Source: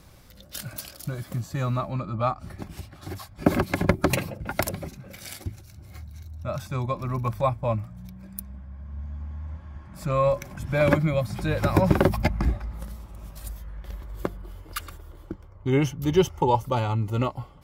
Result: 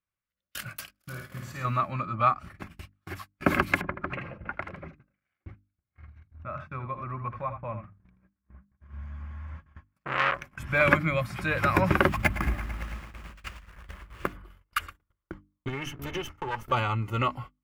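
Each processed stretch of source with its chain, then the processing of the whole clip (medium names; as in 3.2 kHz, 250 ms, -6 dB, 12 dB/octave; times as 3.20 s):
0.91–1.65 s: compression 2:1, threshold -38 dBFS + flutter echo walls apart 9.2 m, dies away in 1 s
3.81–8.80 s: compression 2:1, threshold -34 dBFS + low-pass 1.8 kHz + delay 80 ms -9 dB
9.98–10.44 s: median filter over 5 samples + transformer saturation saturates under 2.2 kHz
12.08–14.33 s: sample-rate reducer 12 kHz + bit-crushed delay 111 ms, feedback 80%, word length 7-bit, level -13.5 dB
15.68–16.72 s: comb filter that takes the minimum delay 2.3 ms + compression 5:1, threshold -27 dBFS
whole clip: gate -37 dBFS, range -40 dB; high-order bell 1.8 kHz +10.5 dB; hum notches 50/100/150/200/250/300 Hz; trim -4 dB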